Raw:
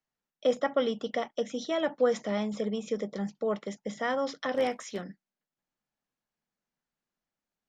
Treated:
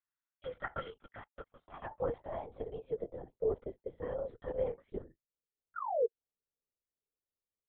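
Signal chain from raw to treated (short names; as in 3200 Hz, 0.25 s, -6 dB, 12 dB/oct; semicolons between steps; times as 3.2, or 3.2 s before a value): comb 2.2 ms, depth 42%; 0.97–1.88 power-law curve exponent 2; 5.75–6.06 painted sound fall 420–1500 Hz -21 dBFS; band-pass sweep 1500 Hz -> 400 Hz, 0.71–3.81; LPC vocoder at 8 kHz whisper; gain -3.5 dB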